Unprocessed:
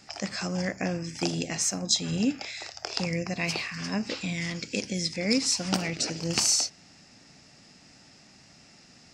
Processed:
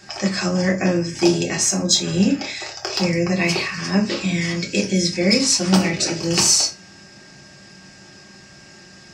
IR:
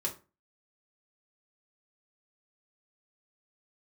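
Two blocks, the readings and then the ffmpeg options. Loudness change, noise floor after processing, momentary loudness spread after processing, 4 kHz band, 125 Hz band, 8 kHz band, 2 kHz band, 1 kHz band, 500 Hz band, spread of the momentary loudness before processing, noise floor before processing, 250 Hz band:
+9.5 dB, −45 dBFS, 7 LU, +8.5 dB, +10.5 dB, +8.5 dB, +9.0 dB, +9.0 dB, +11.5 dB, 8 LU, −55 dBFS, +11.0 dB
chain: -filter_complex "[0:a]acontrast=67,aeval=exprs='val(0)+0.00282*sin(2*PI*1600*n/s)':channel_layout=same[link_01];[1:a]atrim=start_sample=2205[link_02];[link_01][link_02]afir=irnorm=-1:irlink=0"

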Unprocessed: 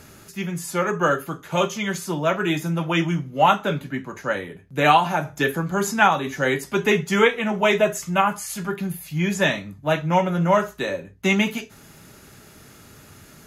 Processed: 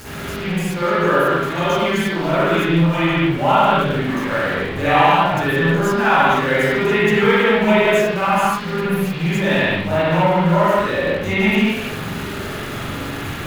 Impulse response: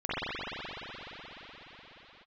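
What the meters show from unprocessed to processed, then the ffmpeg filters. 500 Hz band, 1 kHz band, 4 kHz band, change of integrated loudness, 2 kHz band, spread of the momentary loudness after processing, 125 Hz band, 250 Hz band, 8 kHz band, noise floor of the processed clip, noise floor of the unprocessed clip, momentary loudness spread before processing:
+5.5 dB, +4.5 dB, +4.5 dB, +5.0 dB, +5.5 dB, 12 LU, +6.5 dB, +6.0 dB, −2.5 dB, −27 dBFS, −48 dBFS, 10 LU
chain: -filter_complex "[0:a]aeval=exprs='val(0)+0.5*0.075*sgn(val(0))':channel_layout=same[link_01];[1:a]atrim=start_sample=2205,afade=type=out:start_time=0.36:duration=0.01,atrim=end_sample=16317[link_02];[link_01][link_02]afir=irnorm=-1:irlink=0,volume=-7.5dB"

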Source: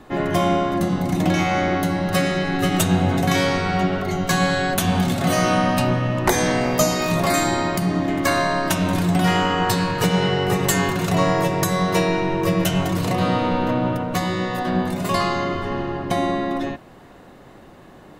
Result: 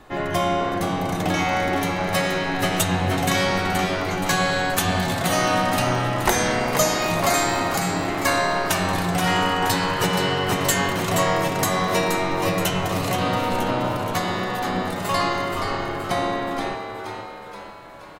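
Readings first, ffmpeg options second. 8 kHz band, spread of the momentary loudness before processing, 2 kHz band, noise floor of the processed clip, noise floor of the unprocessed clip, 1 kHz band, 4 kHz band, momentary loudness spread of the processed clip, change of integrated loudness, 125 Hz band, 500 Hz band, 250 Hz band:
+1.0 dB, 4 LU, +1.0 dB, −37 dBFS, −45 dBFS, +0.5 dB, +1.0 dB, 6 LU, −1.5 dB, −4.5 dB, −1.5 dB, −5.0 dB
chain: -filter_complex "[0:a]equalizer=frequency=230:width=0.75:gain=-7.5,asplit=7[link_01][link_02][link_03][link_04][link_05][link_06][link_07];[link_02]adelay=475,afreqshift=98,volume=-7dB[link_08];[link_03]adelay=950,afreqshift=196,volume=-12.5dB[link_09];[link_04]adelay=1425,afreqshift=294,volume=-18dB[link_10];[link_05]adelay=1900,afreqshift=392,volume=-23.5dB[link_11];[link_06]adelay=2375,afreqshift=490,volume=-29.1dB[link_12];[link_07]adelay=2850,afreqshift=588,volume=-34.6dB[link_13];[link_01][link_08][link_09][link_10][link_11][link_12][link_13]amix=inputs=7:normalize=0"

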